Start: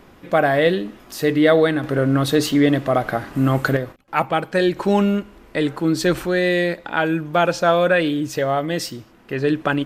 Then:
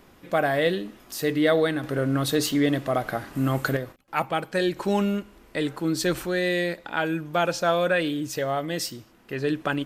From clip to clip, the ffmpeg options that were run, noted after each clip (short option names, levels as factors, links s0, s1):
-af "highshelf=f=4400:g=7.5,volume=0.473"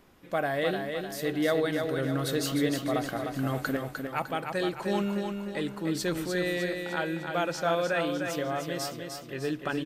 -af "aecho=1:1:303|606|909|1212|1515|1818:0.531|0.255|0.122|0.0587|0.0282|0.0135,volume=0.501"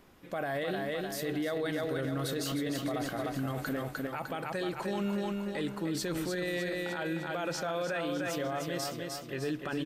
-af "alimiter=level_in=1.19:limit=0.0631:level=0:latency=1:release=24,volume=0.841"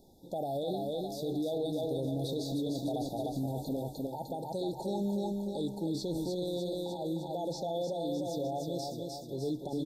-filter_complex "[0:a]acrossover=split=4700[s0][s1];[s1]acompressor=threshold=0.00282:ratio=4:attack=1:release=60[s2];[s0][s2]amix=inputs=2:normalize=0,afftfilt=real='re*(1-between(b*sr/4096,940,3400))':imag='im*(1-between(b*sr/4096,940,3400))':win_size=4096:overlap=0.75"